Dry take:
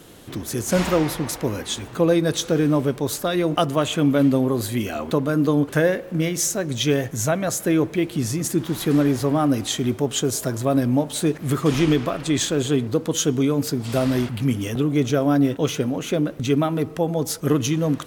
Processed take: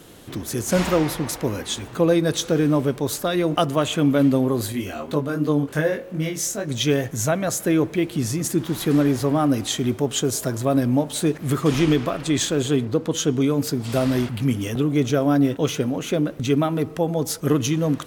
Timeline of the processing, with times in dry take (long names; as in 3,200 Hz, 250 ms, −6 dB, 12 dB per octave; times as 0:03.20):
0:04.72–0:06.68: chorus effect 2.6 Hz, delay 19.5 ms, depth 2.8 ms
0:12.84–0:13.40: high-shelf EQ 5,700 Hz → 8,800 Hz −8 dB